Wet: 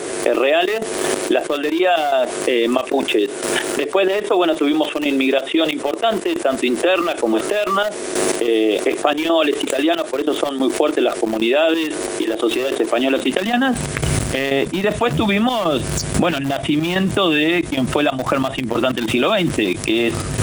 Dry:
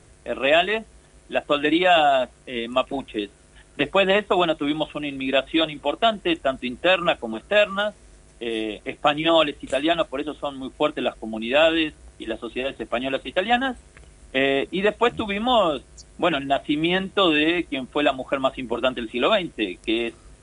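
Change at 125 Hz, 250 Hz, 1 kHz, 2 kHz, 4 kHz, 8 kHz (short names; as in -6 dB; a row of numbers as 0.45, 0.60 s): +11.5 dB, +7.5 dB, +2.0 dB, +2.5 dB, +2.5 dB, n/a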